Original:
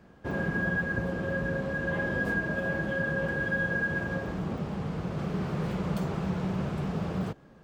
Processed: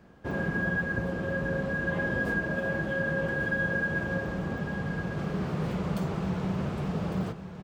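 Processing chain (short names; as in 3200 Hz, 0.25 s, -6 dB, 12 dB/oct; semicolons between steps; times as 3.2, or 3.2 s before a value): echo 1.153 s -11 dB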